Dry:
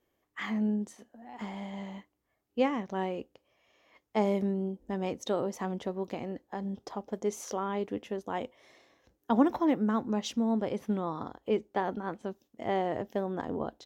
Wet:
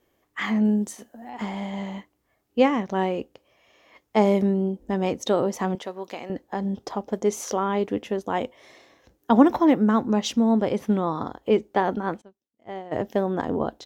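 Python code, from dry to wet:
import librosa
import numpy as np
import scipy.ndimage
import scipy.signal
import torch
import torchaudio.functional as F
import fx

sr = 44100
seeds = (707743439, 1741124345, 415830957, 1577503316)

y = fx.high_shelf(x, sr, hz=7200.0, db=11.0, at=(0.65, 1.3))
y = fx.highpass(y, sr, hz=970.0, slope=6, at=(5.75, 6.3))
y = fx.upward_expand(y, sr, threshold_db=-39.0, expansion=2.5, at=(12.2, 12.91), fade=0.02)
y = y * 10.0 ** (8.5 / 20.0)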